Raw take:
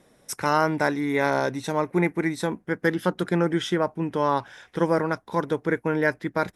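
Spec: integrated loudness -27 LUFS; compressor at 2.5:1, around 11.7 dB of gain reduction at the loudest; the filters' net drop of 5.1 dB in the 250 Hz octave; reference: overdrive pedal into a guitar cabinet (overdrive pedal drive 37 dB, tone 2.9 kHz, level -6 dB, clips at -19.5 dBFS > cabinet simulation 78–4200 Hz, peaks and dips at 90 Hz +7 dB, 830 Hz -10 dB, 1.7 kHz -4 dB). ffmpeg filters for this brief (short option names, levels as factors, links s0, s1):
-filter_complex "[0:a]equalizer=f=250:t=o:g=-8,acompressor=threshold=0.0141:ratio=2.5,asplit=2[s0][s1];[s1]highpass=f=720:p=1,volume=70.8,asoftclip=type=tanh:threshold=0.106[s2];[s0][s2]amix=inputs=2:normalize=0,lowpass=f=2900:p=1,volume=0.501,highpass=78,equalizer=f=90:t=q:w=4:g=7,equalizer=f=830:t=q:w=4:g=-10,equalizer=f=1700:t=q:w=4:g=-4,lowpass=f=4200:w=0.5412,lowpass=f=4200:w=1.3066,volume=1.26"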